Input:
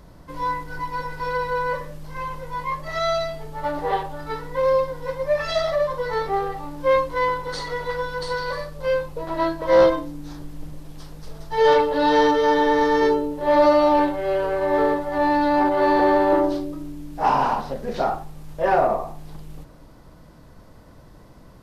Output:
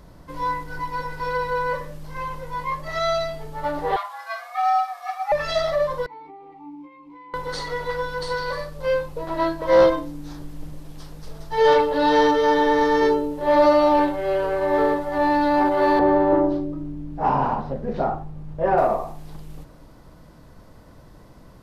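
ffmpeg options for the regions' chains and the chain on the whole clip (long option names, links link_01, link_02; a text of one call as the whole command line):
ffmpeg -i in.wav -filter_complex "[0:a]asettb=1/sr,asplit=3[link_01][link_02][link_03];[link_01]atrim=end=3.964[link_04];[link_02]atrim=start=3.96:end=5.32,asetpts=PTS-STARTPTS,afade=type=in:duration=0.004:curve=qsin,afade=type=out:start_time=1.356:duration=0.004:curve=qsin,highpass=frequency=450:width=0.5412,highpass=frequency=450:width=1.3066,afreqshift=230[link_05];[link_03]atrim=start=5.316[link_06];[link_04][link_05]acrossfade=duration=0.004:curve1=hsin:curve2=qsin[link_07];[link_07][link_06]acrossfade=duration=0.004:curve1=qsin:curve2=hsin,asettb=1/sr,asplit=3[link_08][link_09][link_10];[link_08]atrim=end=6.064[link_11];[link_09]atrim=start=6.06:end=7.34,asetpts=PTS-STARTPTS,afade=type=in:duration=0.004:curve=qsin,afade=type=out:start_time=1.276:duration=0.004:curve=qsin,acompressor=threshold=-24dB:ratio=10:attack=3.2:release=140:knee=1:detection=peak,asplit=3[link_12][link_13][link_14];[link_12]bandpass=frequency=300:width_type=q:width=8,volume=0dB[link_15];[link_13]bandpass=frequency=870:width_type=q:width=8,volume=-6dB[link_16];[link_14]bandpass=frequency=2240:width_type=q:width=8,volume=-9dB[link_17];[link_15][link_16][link_17]amix=inputs=3:normalize=0[link_18];[link_10]atrim=start=7.336[link_19];[link_11][link_18]acrossfade=duration=0.004:curve1=hsin:curve2=qsin[link_20];[link_20][link_19]acrossfade=duration=0.004:curve1=qsin:curve2=hsin,asettb=1/sr,asplit=3[link_21][link_22][link_23];[link_21]atrim=end=15.994[link_24];[link_22]atrim=start=15.99:end=18.78,asetpts=PTS-STARTPTS,afade=type=in:duration=0.004:curve=qsin,afade=type=out:start_time=2.786:duration=0.004:curve=qsin,lowpass=frequency=1100:poles=1,equalizer=frequency=110:width_type=o:width=2.1:gain=6.5[link_25];[link_23]atrim=start=18.776[link_26];[link_24][link_25]acrossfade=duration=0.004:curve1=hsin:curve2=qsin[link_27];[link_27][link_26]acrossfade=duration=0.004:curve1=qsin:curve2=hsin" out.wav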